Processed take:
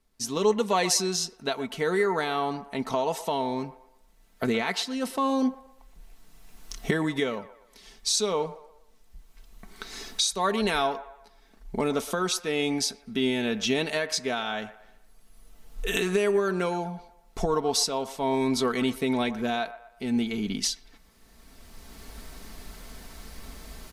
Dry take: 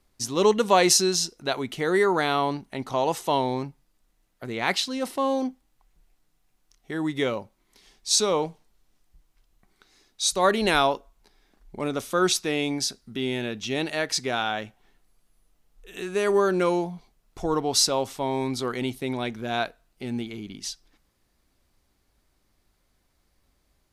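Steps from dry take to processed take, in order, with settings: recorder AGC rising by 15 dB/s; comb 4.5 ms, depth 51%; on a send: band-limited delay 0.12 s, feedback 38%, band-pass 1000 Hz, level -13 dB; on the sum: gain -6 dB

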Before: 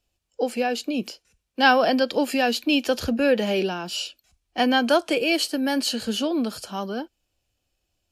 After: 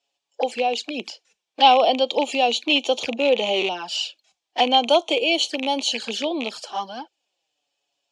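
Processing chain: rattling part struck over -30 dBFS, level -17 dBFS; envelope flanger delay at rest 7.2 ms, full sweep at -21 dBFS; speaker cabinet 450–7700 Hz, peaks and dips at 830 Hz +6 dB, 1400 Hz -5 dB, 3400 Hz +5 dB; gain +4.5 dB

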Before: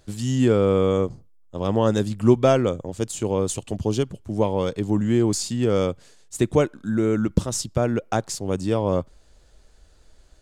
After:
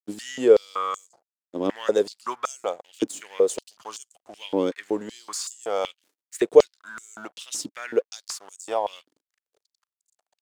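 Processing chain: crossover distortion -46 dBFS; stepped high-pass 5.3 Hz 290–7300 Hz; gain -3 dB

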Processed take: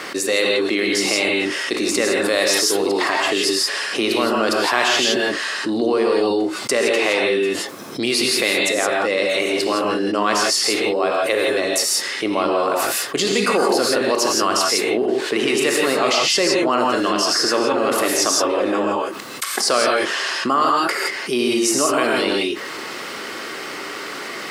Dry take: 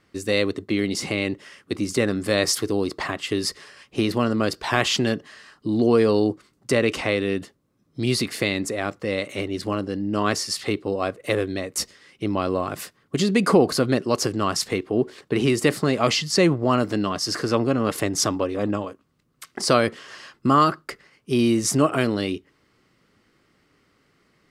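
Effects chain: HPF 430 Hz 12 dB/oct; non-linear reverb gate 0.19 s rising, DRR -1 dB; fast leveller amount 70%; gain -1.5 dB

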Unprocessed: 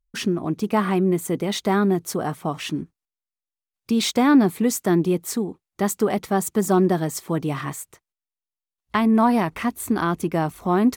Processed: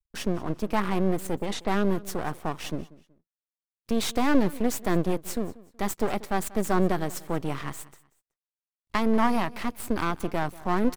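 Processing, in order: half-wave rectifier; 1.38–1.87 low-pass opened by the level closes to 620 Hz, open at -21.5 dBFS; feedback echo 0.187 s, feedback 30%, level -20.5 dB; gain -2 dB

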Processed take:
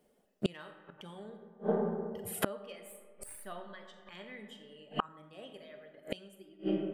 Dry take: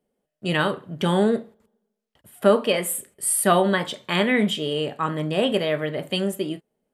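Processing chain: tracing distortion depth 0.022 ms; 0.77–3.38 low shelf 140 Hz +6 dB; reverb removal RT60 2 s; digital reverb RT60 1.9 s, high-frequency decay 0.4×, pre-delay 5 ms, DRR 4.5 dB; flipped gate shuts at -21 dBFS, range -34 dB; low shelf 360 Hz -5 dB; gain +8 dB

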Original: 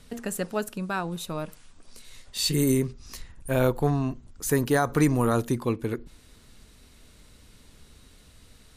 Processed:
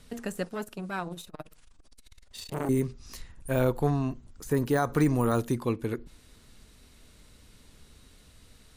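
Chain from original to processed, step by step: de-esser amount 70%; 0.43–2.69 core saturation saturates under 930 Hz; gain -2 dB

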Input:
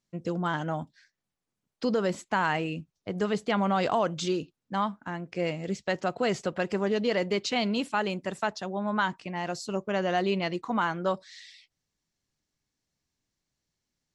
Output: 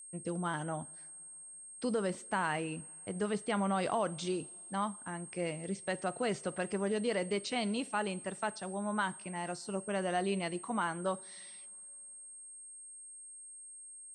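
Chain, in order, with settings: whine 8500 Hz -38 dBFS; high shelf 6700 Hz -6 dB; two-slope reverb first 0.42 s, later 3.2 s, from -18 dB, DRR 17 dB; gain -6.5 dB

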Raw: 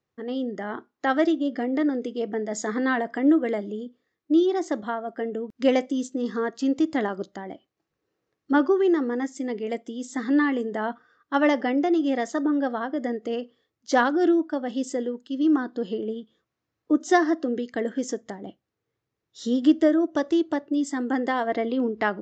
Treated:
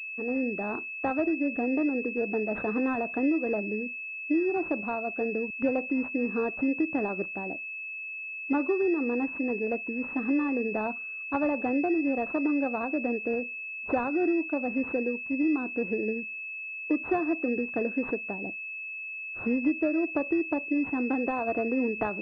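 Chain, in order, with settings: compressor 4:1, threshold -24 dBFS, peak gain reduction 10 dB; pulse-width modulation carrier 2600 Hz

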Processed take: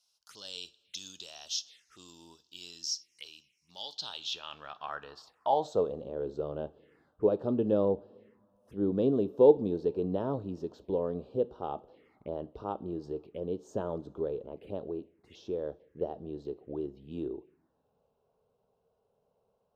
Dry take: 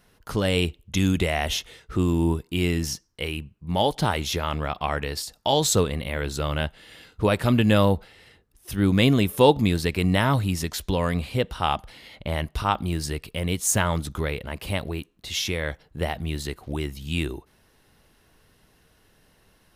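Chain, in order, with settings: two-slope reverb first 0.36 s, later 3.4 s, from -21 dB, DRR 14.5 dB; envelope phaser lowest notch 300 Hz, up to 2100 Hz, full sweep at -27 dBFS; band-pass sweep 5300 Hz -> 430 Hz, 3.8–6.08

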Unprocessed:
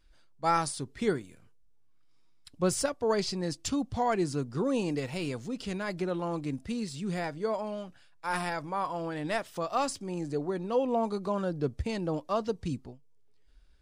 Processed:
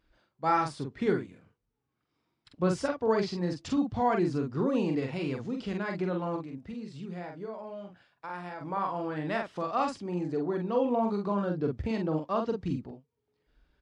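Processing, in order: 6.36–8.61 compressor 4:1, threshold -41 dBFS, peak gain reduction 12.5 dB; HPF 140 Hz 6 dB/oct; tape spacing loss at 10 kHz 24 dB; doubler 45 ms -4 dB; dynamic EQ 580 Hz, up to -4 dB, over -42 dBFS, Q 1.4; gain +3.5 dB

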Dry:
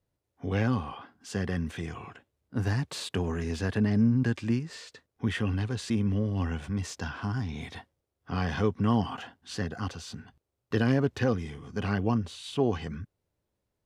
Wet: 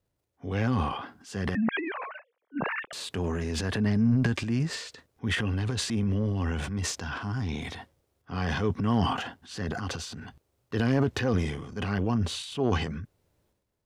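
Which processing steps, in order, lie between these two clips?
1.55–2.93 sine-wave speech; transient shaper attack -4 dB, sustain +10 dB

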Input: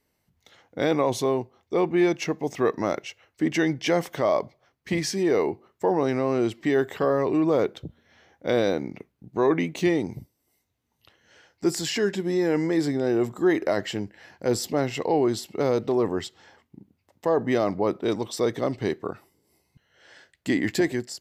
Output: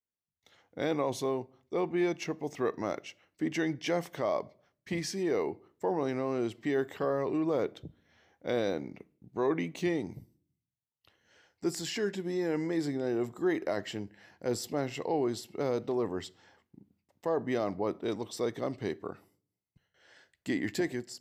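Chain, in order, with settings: gate with hold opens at -55 dBFS; on a send: reverb RT60 0.50 s, pre-delay 3 ms, DRR 21 dB; on the sum: gain -8 dB

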